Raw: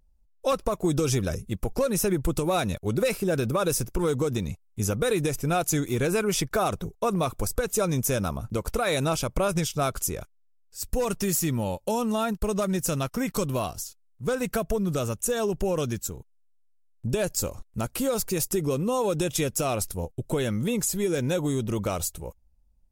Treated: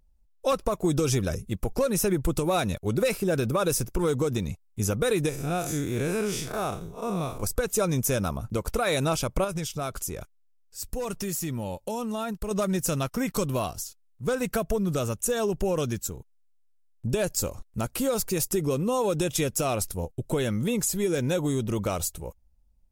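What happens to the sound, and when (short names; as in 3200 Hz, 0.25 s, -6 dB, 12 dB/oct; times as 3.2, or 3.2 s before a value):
5.29–7.43 time blur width 0.126 s
9.44–12.51 compressor 2:1, threshold -31 dBFS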